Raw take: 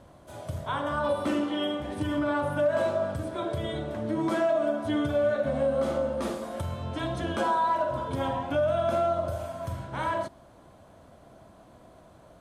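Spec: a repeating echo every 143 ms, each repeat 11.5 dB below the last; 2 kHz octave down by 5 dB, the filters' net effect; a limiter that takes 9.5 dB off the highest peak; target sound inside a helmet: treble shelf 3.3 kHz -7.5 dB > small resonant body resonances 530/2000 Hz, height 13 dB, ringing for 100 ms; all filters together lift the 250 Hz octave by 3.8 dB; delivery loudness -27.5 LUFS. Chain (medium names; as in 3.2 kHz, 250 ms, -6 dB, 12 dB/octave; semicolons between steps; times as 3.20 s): peaking EQ 250 Hz +5 dB; peaking EQ 2 kHz -5.5 dB; peak limiter -24.5 dBFS; treble shelf 3.3 kHz -7.5 dB; feedback delay 143 ms, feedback 27%, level -11.5 dB; small resonant body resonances 530/2000 Hz, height 13 dB, ringing for 100 ms; trim +2 dB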